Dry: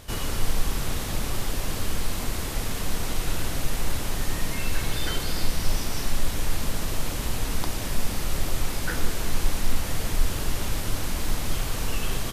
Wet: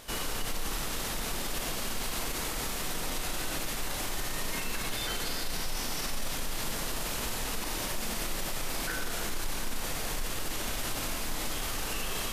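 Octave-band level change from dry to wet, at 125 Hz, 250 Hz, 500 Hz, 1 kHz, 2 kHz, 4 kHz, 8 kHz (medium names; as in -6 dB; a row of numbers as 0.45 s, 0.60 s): -11.5 dB, -6.5 dB, -4.0 dB, -2.0 dB, -2.0 dB, -1.5 dB, -1.5 dB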